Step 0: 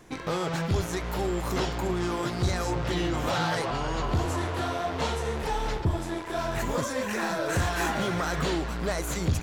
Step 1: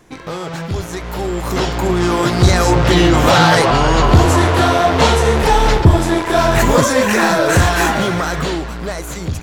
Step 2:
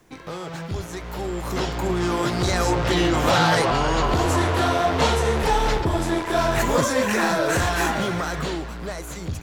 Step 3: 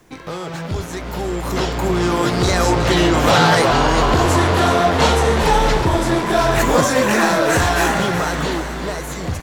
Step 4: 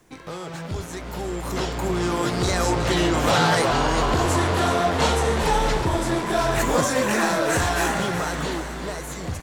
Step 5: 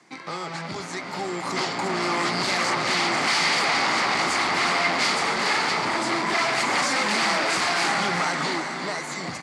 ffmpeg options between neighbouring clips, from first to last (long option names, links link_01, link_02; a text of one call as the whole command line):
ffmpeg -i in.wav -af "dynaudnorm=framelen=350:gausssize=11:maxgain=14dB,volume=3.5dB" out.wav
ffmpeg -i in.wav -filter_complex "[0:a]acrossover=split=280|580|6000[link_01][link_02][link_03][link_04];[link_01]alimiter=limit=-12dB:level=0:latency=1[link_05];[link_05][link_02][link_03][link_04]amix=inputs=4:normalize=0,acrusher=bits=9:mix=0:aa=0.000001,volume=-7.5dB" out.wav
ffmpeg -i in.wav -filter_complex "[0:a]asplit=8[link_01][link_02][link_03][link_04][link_05][link_06][link_07][link_08];[link_02]adelay=370,afreqshift=92,volume=-10.5dB[link_09];[link_03]adelay=740,afreqshift=184,volume=-15.2dB[link_10];[link_04]adelay=1110,afreqshift=276,volume=-20dB[link_11];[link_05]adelay=1480,afreqshift=368,volume=-24.7dB[link_12];[link_06]adelay=1850,afreqshift=460,volume=-29.4dB[link_13];[link_07]adelay=2220,afreqshift=552,volume=-34.2dB[link_14];[link_08]adelay=2590,afreqshift=644,volume=-38.9dB[link_15];[link_01][link_09][link_10][link_11][link_12][link_13][link_14][link_15]amix=inputs=8:normalize=0,volume=5dB" out.wav
ffmpeg -i in.wav -af "equalizer=frequency=8700:width=1.5:gain=4,volume=-6dB" out.wav
ffmpeg -i in.wav -af "aeval=exprs='0.0891*(abs(mod(val(0)/0.0891+3,4)-2)-1)':channel_layout=same,highpass=frequency=160:width=0.5412,highpass=frequency=160:width=1.3066,equalizer=frequency=470:width_type=q:width=4:gain=-5,equalizer=frequency=820:width_type=q:width=4:gain=5,equalizer=frequency=1200:width_type=q:width=4:gain=6,equalizer=frequency=2100:width_type=q:width=4:gain=10,equalizer=frequency=4600:width_type=q:width=4:gain=10,lowpass=frequency=9000:width=0.5412,lowpass=frequency=9000:width=1.3066" out.wav